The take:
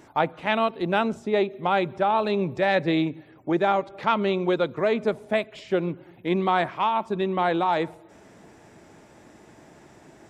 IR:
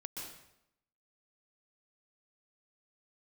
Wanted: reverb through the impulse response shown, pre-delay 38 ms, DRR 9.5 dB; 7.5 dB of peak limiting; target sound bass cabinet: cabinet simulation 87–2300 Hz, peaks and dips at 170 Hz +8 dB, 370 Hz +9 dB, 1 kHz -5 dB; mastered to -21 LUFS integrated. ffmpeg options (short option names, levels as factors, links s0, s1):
-filter_complex "[0:a]alimiter=limit=0.168:level=0:latency=1,asplit=2[s0][s1];[1:a]atrim=start_sample=2205,adelay=38[s2];[s1][s2]afir=irnorm=-1:irlink=0,volume=0.398[s3];[s0][s3]amix=inputs=2:normalize=0,highpass=f=87:w=0.5412,highpass=f=87:w=1.3066,equalizer=f=170:t=q:w=4:g=8,equalizer=f=370:t=q:w=4:g=9,equalizer=f=1000:t=q:w=4:g=-5,lowpass=f=2300:w=0.5412,lowpass=f=2300:w=1.3066,volume=1.19"